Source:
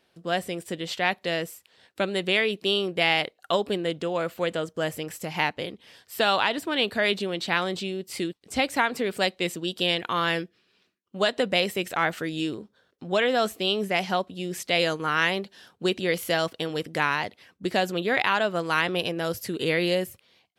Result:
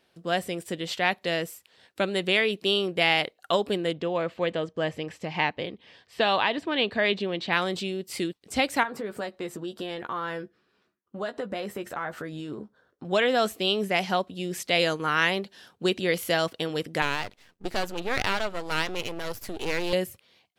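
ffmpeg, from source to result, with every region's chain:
-filter_complex "[0:a]asettb=1/sr,asplit=3[a][b][c];[a]atrim=end=3.934[d];[b]atrim=start=3.93:end=7.53,asetpts=PTS-STARTPTS,afade=t=in:d=0.004:c=qsin,afade=t=out:st=3.596:d=0.004:c=qsin,lowpass=3.9k,bandreject=f=1.4k:w=9.2[e];[c]atrim=start=7.526[f];[d][e]acrossfade=d=0.004:c1=hsin:c2=qsin[g];[g][f]acrossfade=d=0.004:c1=qsin:c2=hsin,asettb=1/sr,asplit=3[h][i][j];[h]atrim=end=8.834[k];[i]atrim=start=8.83:end=13.05,asetpts=PTS-STARTPTS,afade=t=in:d=0.004:c=qsin,afade=t=out:st=4.216:d=0.004:c=qsin,highshelf=f=1.9k:t=q:w=1.5:g=-7.5,acompressor=threshold=-32dB:ratio=2.5:attack=3.2:release=140:knee=1:detection=peak,asplit=2[l][m];[m]adelay=14,volume=-8dB[n];[l][n]amix=inputs=2:normalize=0,atrim=end_sample=186102[o];[j]atrim=start=13.046[p];[k][o]acrossfade=d=0.004:c1=hsin:c2=qsin[q];[q][p]acrossfade=d=0.004:c1=qsin:c2=hsin,asettb=1/sr,asplit=3[r][s][t];[r]atrim=end=17.024[u];[s]atrim=start=17.02:end=19.93,asetpts=PTS-STARTPTS,afade=t=in:d=0.004:c=qsin,afade=t=out:st=2.906:d=0.004:c=qsin,bandreject=f=1.1k:w=12,aeval=exprs='max(val(0),0)':c=same[v];[t]atrim=start=19.926[w];[u][v]acrossfade=d=0.004:c1=hsin:c2=qsin[x];[x][w]acrossfade=d=0.004:c1=qsin:c2=hsin"

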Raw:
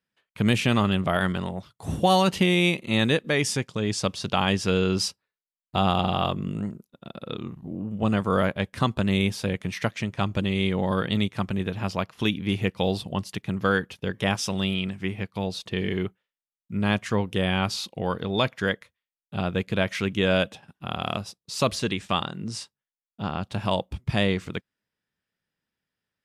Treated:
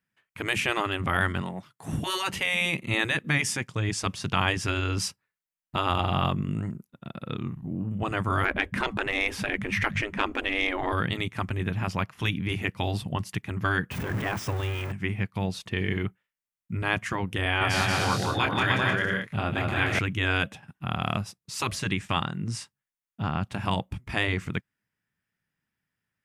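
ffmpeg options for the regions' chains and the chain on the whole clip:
-filter_complex "[0:a]asettb=1/sr,asplit=3[a][b][c];[a]atrim=end=1.414[d];[b]atrim=start=1.41:end=1.93,asetpts=PTS-STARTPTS,afade=t=in:d=0.004:c=qsin,afade=t=out:st=0.516:d=0.004:c=qsin,aeval=exprs='if(lt(val(0),0),0.708*val(0),val(0))':c=same,highpass=200[e];[c]atrim=start=1.926[f];[d][e]acrossfade=d=0.004:c1=hsin:c2=qsin[g];[g][f]acrossfade=d=0.004:c1=qsin:c2=hsin,asettb=1/sr,asplit=3[h][i][j];[h]atrim=end=8.454[k];[i]atrim=start=8.45:end=10.92,asetpts=PTS-STARTPTS,afade=t=in:d=0.004:c=qsin,afade=t=out:st=2.466:d=0.004:c=qsin,bass=f=250:g=13,treble=f=4k:g=-9,bandreject=f=50:t=h:w=6,bandreject=f=100:t=h:w=6,bandreject=f=150:t=h:w=6,bandreject=f=200:t=h:w=6,acontrast=83[l];[j]atrim=start=10.916[m];[k][l]acrossfade=d=0.004:c1=hsin:c2=qsin[n];[n][m]acrossfade=d=0.004:c1=qsin:c2=hsin,asettb=1/sr,asplit=3[o][p][q];[o]atrim=end=13.914[r];[p]atrim=start=13.91:end=14.92,asetpts=PTS-STARTPTS,afade=t=in:d=0.004:c=qsin,afade=t=out:st=1.006:d=0.004:c=qsin,aeval=exprs='val(0)+0.5*0.0631*sgn(val(0))':c=same,highpass=41,deesser=0.85[s];[q]atrim=start=14.916[t];[r][s]acrossfade=d=0.004:c1=hsin:c2=qsin[u];[u][t]acrossfade=d=0.004:c1=qsin:c2=hsin,asettb=1/sr,asplit=3[v][w][x];[v]atrim=end=17.434[y];[w]atrim=start=17.43:end=19.99,asetpts=PTS-STARTPTS,afade=t=in:d=0.004:c=qsin,afade=t=out:st=2.556:d=0.004:c=qsin,asplit=2[z][aa];[aa]adelay=26,volume=-6dB[ab];[z][ab]amix=inputs=2:normalize=0,atrim=end_sample=112896,aecho=1:1:180|306|394.2|455.9|499.2:0.794|0.631|0.501|0.398|0.316,atrim=end_sample=112896[ac];[x]atrim=start=19.986[ad];[y][ac]acrossfade=d=0.004:c1=hsin:c2=qsin[ae];[ae][ad]acrossfade=d=0.004:c1=qsin:c2=hsin,afftfilt=real='re*lt(hypot(re,im),0.355)':imag='im*lt(hypot(re,im),0.355)':win_size=1024:overlap=0.75,equalizer=f=125:t=o:w=1:g=5,equalizer=f=500:t=o:w=1:g=-6,equalizer=f=2k:t=o:w=1:g=4,equalizer=f=4k:t=o:w=1:g=-7,volume=1dB"

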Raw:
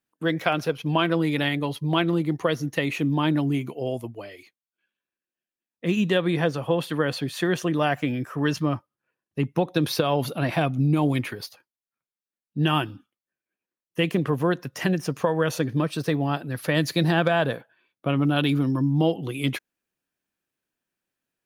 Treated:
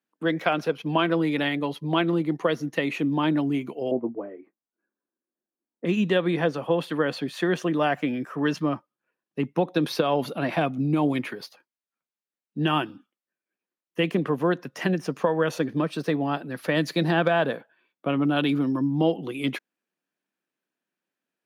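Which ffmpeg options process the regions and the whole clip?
-filter_complex "[0:a]asettb=1/sr,asplit=3[a][b][c];[a]atrim=end=3.914[d];[b]atrim=start=3.91:end=5.85,asetpts=PTS-STARTPTS,afade=t=in:d=0.004:c=qsin,afade=t=out:st=1.936:d=0.004:c=qsin,lowpass=f=1.4k:w=0.5412,lowpass=f=1.4k:w=1.3066,equalizer=f=300:w=1:g=8.5,asplit=2[e][f];[f]adelay=21,volume=-14dB[g];[e][g]amix=inputs=2:normalize=0,atrim=end_sample=85554[h];[c]atrim=start=5.846[i];[d][h]acrossfade=d=0.004:c1=hsin:c2=qsin[j];[j][i]acrossfade=d=0.004:c1=qsin:c2=hsin,highpass=f=170:w=0.5412,highpass=f=170:w=1.3066,aemphasis=mode=reproduction:type=cd"

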